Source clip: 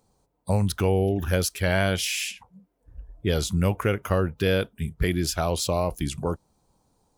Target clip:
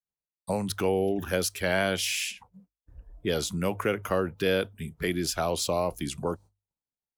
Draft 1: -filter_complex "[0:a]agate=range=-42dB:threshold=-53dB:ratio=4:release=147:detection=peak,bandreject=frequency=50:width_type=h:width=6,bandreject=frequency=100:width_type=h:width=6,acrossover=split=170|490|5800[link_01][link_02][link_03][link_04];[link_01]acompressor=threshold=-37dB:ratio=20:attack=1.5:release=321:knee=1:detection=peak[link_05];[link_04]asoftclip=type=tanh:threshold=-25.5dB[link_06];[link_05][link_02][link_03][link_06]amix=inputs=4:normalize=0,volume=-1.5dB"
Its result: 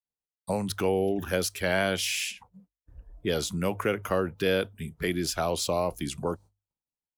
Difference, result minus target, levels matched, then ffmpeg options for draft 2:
soft clipping: distortion +9 dB
-filter_complex "[0:a]agate=range=-42dB:threshold=-53dB:ratio=4:release=147:detection=peak,bandreject=frequency=50:width_type=h:width=6,bandreject=frequency=100:width_type=h:width=6,acrossover=split=170|490|5800[link_01][link_02][link_03][link_04];[link_01]acompressor=threshold=-37dB:ratio=20:attack=1.5:release=321:knee=1:detection=peak[link_05];[link_04]asoftclip=type=tanh:threshold=-19dB[link_06];[link_05][link_02][link_03][link_06]amix=inputs=4:normalize=0,volume=-1.5dB"

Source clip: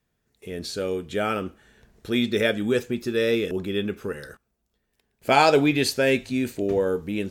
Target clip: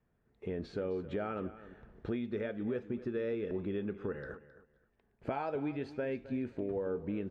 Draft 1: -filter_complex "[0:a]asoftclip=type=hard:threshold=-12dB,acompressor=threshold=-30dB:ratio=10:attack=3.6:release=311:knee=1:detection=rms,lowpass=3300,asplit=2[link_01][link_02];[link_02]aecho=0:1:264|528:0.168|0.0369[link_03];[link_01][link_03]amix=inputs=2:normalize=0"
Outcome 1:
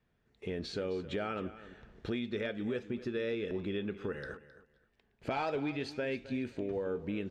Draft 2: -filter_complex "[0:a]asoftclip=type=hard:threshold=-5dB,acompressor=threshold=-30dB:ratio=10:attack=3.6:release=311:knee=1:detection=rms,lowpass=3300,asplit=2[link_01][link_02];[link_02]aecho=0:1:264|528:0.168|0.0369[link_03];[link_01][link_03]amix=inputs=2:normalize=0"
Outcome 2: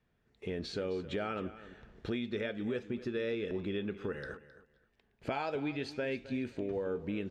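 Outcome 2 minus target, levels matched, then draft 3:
4,000 Hz band +11.0 dB
-filter_complex "[0:a]asoftclip=type=hard:threshold=-5dB,acompressor=threshold=-30dB:ratio=10:attack=3.6:release=311:knee=1:detection=rms,lowpass=1500,asplit=2[link_01][link_02];[link_02]aecho=0:1:264|528:0.168|0.0369[link_03];[link_01][link_03]amix=inputs=2:normalize=0"

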